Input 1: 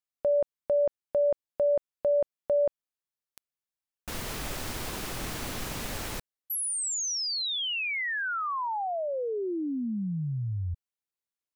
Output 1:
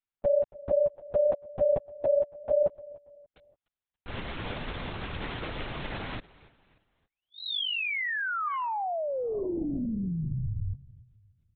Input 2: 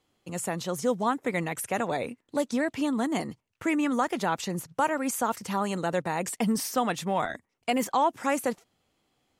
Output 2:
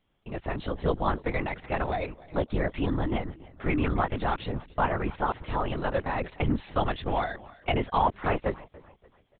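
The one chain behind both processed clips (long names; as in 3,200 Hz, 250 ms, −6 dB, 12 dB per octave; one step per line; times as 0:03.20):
on a send: repeating echo 288 ms, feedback 39%, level −21 dB
on the sum: linear-prediction vocoder at 8 kHz whisper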